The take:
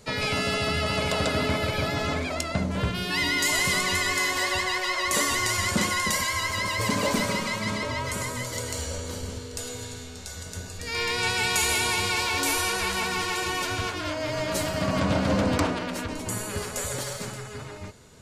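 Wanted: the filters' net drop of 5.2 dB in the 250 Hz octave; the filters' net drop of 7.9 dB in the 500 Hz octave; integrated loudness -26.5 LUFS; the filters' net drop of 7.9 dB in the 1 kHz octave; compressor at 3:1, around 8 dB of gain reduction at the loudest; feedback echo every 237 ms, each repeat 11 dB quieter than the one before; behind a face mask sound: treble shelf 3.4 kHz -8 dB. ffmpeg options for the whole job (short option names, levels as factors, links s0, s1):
-af "equalizer=f=250:t=o:g=-5,equalizer=f=500:t=o:g=-6.5,equalizer=f=1000:t=o:g=-7,acompressor=threshold=0.02:ratio=3,highshelf=f=3400:g=-8,aecho=1:1:237|474|711:0.282|0.0789|0.0221,volume=3.35"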